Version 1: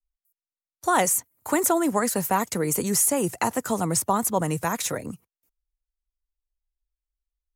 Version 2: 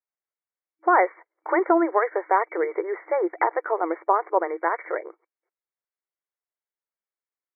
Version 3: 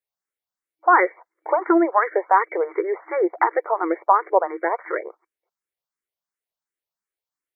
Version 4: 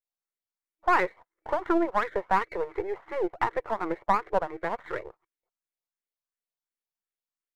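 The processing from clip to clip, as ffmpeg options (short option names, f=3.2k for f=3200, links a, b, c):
-af "afftfilt=real='re*between(b*sr/4096,320,2300)':imag='im*between(b*sr/4096,320,2300)':win_size=4096:overlap=0.75,volume=3.5dB"
-filter_complex "[0:a]asplit=2[a][b];[b]afreqshift=2.8[c];[a][c]amix=inputs=2:normalize=1,volume=5.5dB"
-af "aeval=exprs='if(lt(val(0),0),0.447*val(0),val(0))':c=same,volume=-5.5dB"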